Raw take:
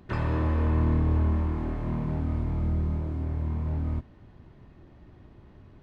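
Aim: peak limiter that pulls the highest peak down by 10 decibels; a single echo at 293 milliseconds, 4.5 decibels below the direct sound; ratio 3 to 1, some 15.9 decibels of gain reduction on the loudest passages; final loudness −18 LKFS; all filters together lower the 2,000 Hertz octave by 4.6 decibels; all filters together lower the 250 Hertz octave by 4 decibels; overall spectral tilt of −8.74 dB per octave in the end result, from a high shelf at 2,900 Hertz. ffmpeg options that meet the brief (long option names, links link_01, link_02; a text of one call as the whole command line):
ffmpeg -i in.wav -af "equalizer=frequency=250:width_type=o:gain=-5.5,equalizer=frequency=2000:width_type=o:gain=-8,highshelf=frequency=2900:gain=5.5,acompressor=threshold=-44dB:ratio=3,alimiter=level_in=16dB:limit=-24dB:level=0:latency=1,volume=-16dB,aecho=1:1:293:0.596,volume=29dB" out.wav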